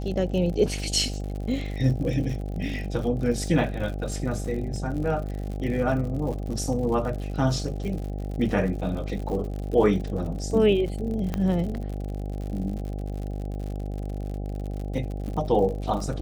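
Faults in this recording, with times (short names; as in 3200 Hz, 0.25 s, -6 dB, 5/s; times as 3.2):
buzz 50 Hz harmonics 16 -31 dBFS
crackle 79/s -33 dBFS
11.34 pop -15 dBFS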